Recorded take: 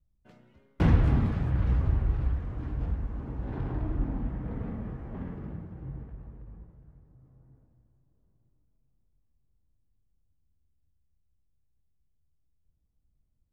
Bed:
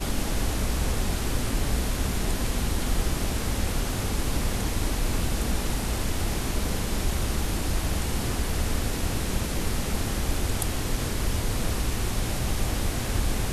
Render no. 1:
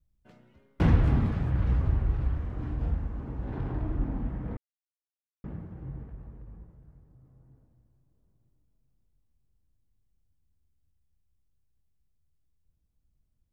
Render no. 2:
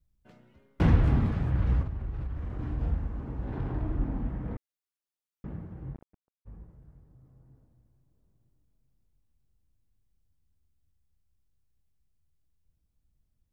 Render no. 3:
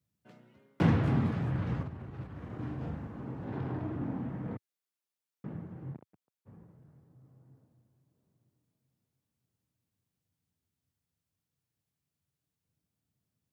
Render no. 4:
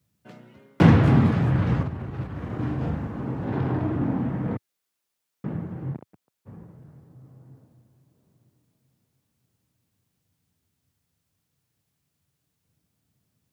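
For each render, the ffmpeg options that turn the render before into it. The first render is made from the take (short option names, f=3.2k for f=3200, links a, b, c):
-filter_complex "[0:a]asettb=1/sr,asplit=3[a][b][c];[a]atrim=end=2.284[d];[b]atrim=start=2.28:end=3.08,asetpts=PTS-STARTPTS,afade=t=in:d=0.004:c=qsin,afade=t=out:st=0.796:d=0.004:c=qsin,asplit=2[e][f];[f]adelay=40,volume=-5dB[g];[e][g]amix=inputs=2:normalize=0,atrim=end_sample=35280[h];[c]atrim=start=3.076[i];[d][h]acrossfade=d=0.004:c1=hsin:c2=qsin[j];[j][i]acrossfade=d=0.004:c1=qsin:c2=hsin,asplit=3[k][l][m];[k]atrim=end=4.57,asetpts=PTS-STARTPTS,afade=t=out:st=4.566:d=0.004:c=hsin[n];[l]atrim=start=4.57:end=5.44,asetpts=PTS-STARTPTS,volume=0[o];[m]atrim=start=5.44,asetpts=PTS-STARTPTS,afade=t=in:d=0.004:c=hsin[p];[n][o][p]concat=n=3:v=0:a=1"
-filter_complex "[0:a]asettb=1/sr,asplit=3[a][b][c];[a]atrim=end=1.824[d];[b]atrim=start=1.82:end=2.59,asetpts=PTS-STARTPTS,afade=t=in:d=0.004:c=qsin,afade=t=out:st=0.766:d=0.004:c=qsin,acompressor=threshold=-30dB:ratio=6:attack=3.2:release=140:knee=1:detection=peak[e];[c]atrim=start=2.586[f];[d][e]acrossfade=d=0.004:c1=hsin:c2=qsin[g];[g][f]acrossfade=d=0.004:c1=qsin:c2=hsin,asplit=3[h][i][j];[h]afade=t=out:st=5.93:d=0.02[k];[i]acrusher=bits=4:mix=0:aa=0.5,afade=t=in:st=5.93:d=0.02,afade=t=out:st=6.45:d=0.02[l];[j]afade=t=in:st=6.45:d=0.02[m];[k][l][m]amix=inputs=3:normalize=0"
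-af "highpass=f=110:w=0.5412,highpass=f=110:w=1.3066"
-af "volume=10.5dB"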